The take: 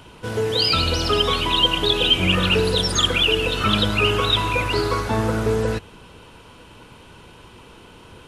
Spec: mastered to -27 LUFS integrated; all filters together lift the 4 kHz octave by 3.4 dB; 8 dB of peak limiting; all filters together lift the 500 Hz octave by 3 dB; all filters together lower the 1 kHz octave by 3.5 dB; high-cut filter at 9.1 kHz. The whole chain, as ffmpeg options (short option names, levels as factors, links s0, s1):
-af "lowpass=9100,equalizer=f=500:t=o:g=4.5,equalizer=f=1000:t=o:g=-5.5,equalizer=f=4000:t=o:g=5,volume=0.398,alimiter=limit=0.119:level=0:latency=1"